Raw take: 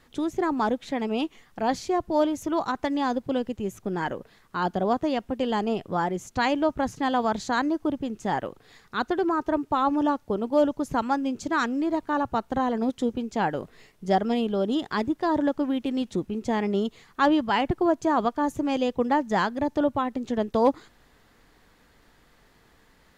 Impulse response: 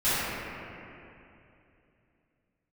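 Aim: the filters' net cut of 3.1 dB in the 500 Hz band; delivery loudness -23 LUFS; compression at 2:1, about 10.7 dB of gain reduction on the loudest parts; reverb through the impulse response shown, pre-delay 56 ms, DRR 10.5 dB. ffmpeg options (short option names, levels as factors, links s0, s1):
-filter_complex "[0:a]equalizer=f=500:t=o:g=-4,acompressor=threshold=0.0126:ratio=2,asplit=2[s0][s1];[1:a]atrim=start_sample=2205,adelay=56[s2];[s1][s2]afir=irnorm=-1:irlink=0,volume=0.0473[s3];[s0][s3]amix=inputs=2:normalize=0,volume=4.47"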